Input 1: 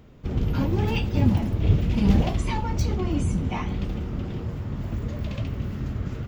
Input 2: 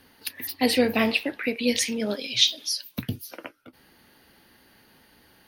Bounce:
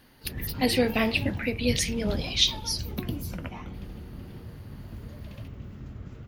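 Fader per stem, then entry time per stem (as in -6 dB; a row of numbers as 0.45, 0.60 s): -11.5, -2.5 dB; 0.00, 0.00 s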